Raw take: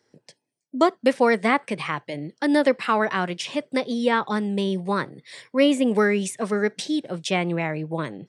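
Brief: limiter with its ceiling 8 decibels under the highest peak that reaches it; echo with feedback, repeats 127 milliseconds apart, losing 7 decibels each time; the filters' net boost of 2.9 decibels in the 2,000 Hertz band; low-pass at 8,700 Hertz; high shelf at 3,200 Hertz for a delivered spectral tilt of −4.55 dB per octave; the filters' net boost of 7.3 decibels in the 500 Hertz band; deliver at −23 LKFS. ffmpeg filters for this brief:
ffmpeg -i in.wav -af "lowpass=8700,equalizer=frequency=500:width_type=o:gain=8.5,equalizer=frequency=2000:width_type=o:gain=5,highshelf=frequency=3200:gain=-7,alimiter=limit=-8.5dB:level=0:latency=1,aecho=1:1:127|254|381|508|635:0.447|0.201|0.0905|0.0407|0.0183,volume=-3dB" out.wav

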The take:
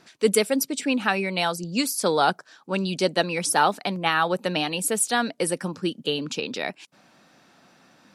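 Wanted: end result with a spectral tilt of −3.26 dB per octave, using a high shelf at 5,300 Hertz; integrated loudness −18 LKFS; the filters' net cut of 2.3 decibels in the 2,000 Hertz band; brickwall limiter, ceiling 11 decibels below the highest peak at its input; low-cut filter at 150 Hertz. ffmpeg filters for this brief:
ffmpeg -i in.wav -af "highpass=150,equalizer=frequency=2000:width_type=o:gain=-4.5,highshelf=frequency=5300:gain=8.5,volume=7dB,alimiter=limit=-5dB:level=0:latency=1" out.wav

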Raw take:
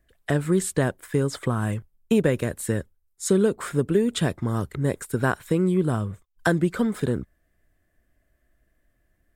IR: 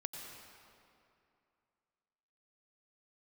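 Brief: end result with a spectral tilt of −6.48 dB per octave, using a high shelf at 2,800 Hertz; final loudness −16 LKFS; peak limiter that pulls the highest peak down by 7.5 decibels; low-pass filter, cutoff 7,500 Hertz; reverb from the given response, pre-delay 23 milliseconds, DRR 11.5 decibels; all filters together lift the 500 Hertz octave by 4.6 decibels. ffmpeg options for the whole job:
-filter_complex "[0:a]lowpass=7500,equalizer=frequency=500:width_type=o:gain=6,highshelf=frequency=2800:gain=-4,alimiter=limit=-13dB:level=0:latency=1,asplit=2[link_01][link_02];[1:a]atrim=start_sample=2205,adelay=23[link_03];[link_02][link_03]afir=irnorm=-1:irlink=0,volume=-10.5dB[link_04];[link_01][link_04]amix=inputs=2:normalize=0,volume=8.5dB"

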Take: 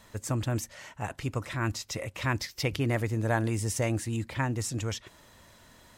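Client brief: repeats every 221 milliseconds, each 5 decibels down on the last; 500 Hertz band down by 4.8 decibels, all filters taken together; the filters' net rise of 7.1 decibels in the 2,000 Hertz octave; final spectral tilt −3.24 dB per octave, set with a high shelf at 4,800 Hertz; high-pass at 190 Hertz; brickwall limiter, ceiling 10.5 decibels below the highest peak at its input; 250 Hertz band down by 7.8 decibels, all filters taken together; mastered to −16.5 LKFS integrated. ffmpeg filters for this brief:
ffmpeg -i in.wav -af "highpass=190,equalizer=frequency=250:width_type=o:gain=-7,equalizer=frequency=500:width_type=o:gain=-4.5,equalizer=frequency=2000:width_type=o:gain=8,highshelf=frequency=4800:gain=6.5,alimiter=limit=-20.5dB:level=0:latency=1,aecho=1:1:221|442|663|884|1105|1326|1547:0.562|0.315|0.176|0.0988|0.0553|0.031|0.0173,volume=15.5dB" out.wav

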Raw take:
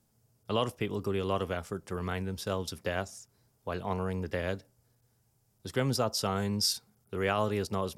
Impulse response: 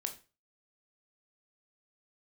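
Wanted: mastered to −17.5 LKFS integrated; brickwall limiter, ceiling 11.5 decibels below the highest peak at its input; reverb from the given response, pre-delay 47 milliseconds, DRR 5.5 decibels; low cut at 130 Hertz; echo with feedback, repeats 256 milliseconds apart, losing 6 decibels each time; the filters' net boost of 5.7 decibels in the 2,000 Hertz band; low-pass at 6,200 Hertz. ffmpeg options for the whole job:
-filter_complex "[0:a]highpass=130,lowpass=6200,equalizer=frequency=2000:width_type=o:gain=7.5,alimiter=limit=-23dB:level=0:latency=1,aecho=1:1:256|512|768|1024|1280|1536:0.501|0.251|0.125|0.0626|0.0313|0.0157,asplit=2[link_01][link_02];[1:a]atrim=start_sample=2205,adelay=47[link_03];[link_02][link_03]afir=irnorm=-1:irlink=0,volume=-5dB[link_04];[link_01][link_04]amix=inputs=2:normalize=0,volume=16dB"

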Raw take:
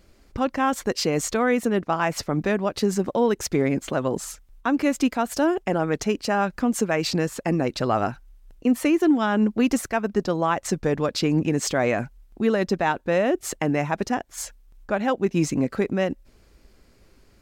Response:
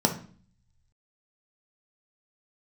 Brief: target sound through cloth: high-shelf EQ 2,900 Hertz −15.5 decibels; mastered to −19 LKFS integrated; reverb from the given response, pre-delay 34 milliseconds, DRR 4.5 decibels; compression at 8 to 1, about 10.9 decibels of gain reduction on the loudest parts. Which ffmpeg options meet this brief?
-filter_complex "[0:a]acompressor=threshold=-27dB:ratio=8,asplit=2[link_01][link_02];[1:a]atrim=start_sample=2205,adelay=34[link_03];[link_02][link_03]afir=irnorm=-1:irlink=0,volume=-17dB[link_04];[link_01][link_04]amix=inputs=2:normalize=0,highshelf=frequency=2900:gain=-15.5,volume=10dB"

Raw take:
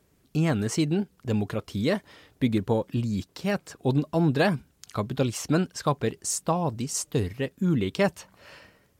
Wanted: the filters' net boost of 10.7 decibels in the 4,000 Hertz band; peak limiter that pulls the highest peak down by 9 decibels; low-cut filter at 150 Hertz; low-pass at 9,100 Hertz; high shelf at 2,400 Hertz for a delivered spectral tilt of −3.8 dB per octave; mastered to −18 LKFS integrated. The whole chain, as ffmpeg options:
ffmpeg -i in.wav -af "highpass=150,lowpass=9100,highshelf=frequency=2400:gain=5,equalizer=frequency=4000:width_type=o:gain=9,volume=10dB,alimiter=limit=-4.5dB:level=0:latency=1" out.wav

